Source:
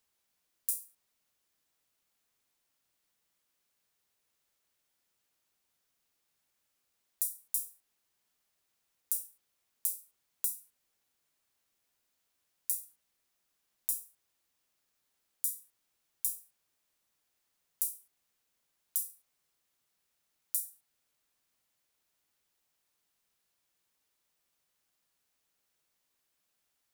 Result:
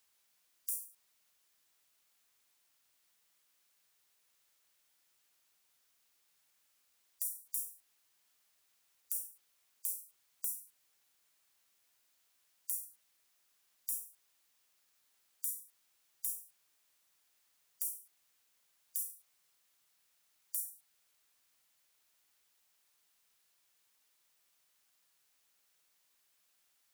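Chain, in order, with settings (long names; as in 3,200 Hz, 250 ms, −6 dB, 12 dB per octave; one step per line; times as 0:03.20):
gate on every frequency bin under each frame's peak −25 dB strong
tilt shelving filter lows −4.5 dB, about 660 Hz
downward compressor 3 to 1, threshold −31 dBFS, peak gain reduction 7 dB
brickwall limiter −13 dBFS, peak gain reduction 7 dB
level +1 dB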